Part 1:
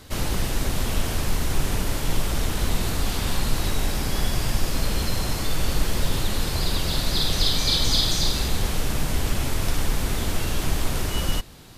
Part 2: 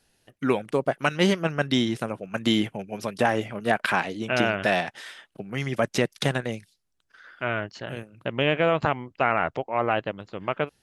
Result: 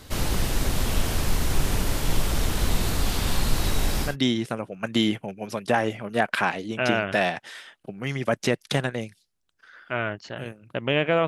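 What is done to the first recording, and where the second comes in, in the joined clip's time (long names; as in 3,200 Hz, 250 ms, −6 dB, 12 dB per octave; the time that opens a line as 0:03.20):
part 1
0:04.09: continue with part 2 from 0:01.60, crossfade 0.14 s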